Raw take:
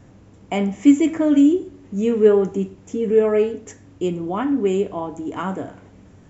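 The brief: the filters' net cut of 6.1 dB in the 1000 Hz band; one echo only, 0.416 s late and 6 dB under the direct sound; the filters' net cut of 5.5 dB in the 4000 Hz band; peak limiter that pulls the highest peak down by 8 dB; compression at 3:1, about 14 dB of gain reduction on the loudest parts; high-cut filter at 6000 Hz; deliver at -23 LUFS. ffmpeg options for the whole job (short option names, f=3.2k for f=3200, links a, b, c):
-af "lowpass=6k,equalizer=f=1k:t=o:g=-8,equalizer=f=4k:t=o:g=-7.5,acompressor=threshold=-28dB:ratio=3,alimiter=level_in=1dB:limit=-24dB:level=0:latency=1,volume=-1dB,aecho=1:1:416:0.501,volume=9.5dB"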